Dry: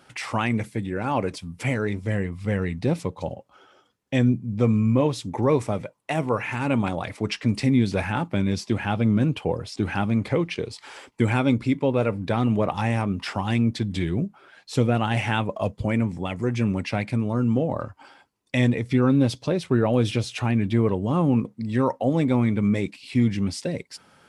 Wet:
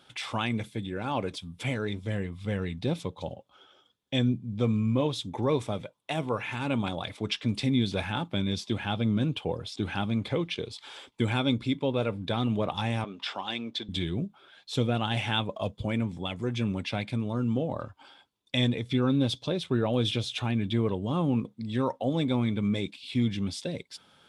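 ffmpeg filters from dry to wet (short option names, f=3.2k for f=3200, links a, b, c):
-filter_complex "[0:a]asettb=1/sr,asplit=3[a][b][c];[a]atrim=end=13.044[d];[b]atrim=start=13.04:end=13.89,asetpts=PTS-STARTPTS,afade=t=in:d=0.004:c=qsin,afade=t=out:st=0.846:d=0.004:c=qsin,highpass=380,lowpass=6.2k[e];[c]atrim=start=13.886[f];[d][e]acrossfade=d=0.004:c1=hsin:c2=qsin[g];[g][f]acrossfade=d=0.004:c1=qsin:c2=hsin,equalizer=f=3.5k:w=4.1:g=14,bandreject=f=1.9k:w=15,volume=-6dB"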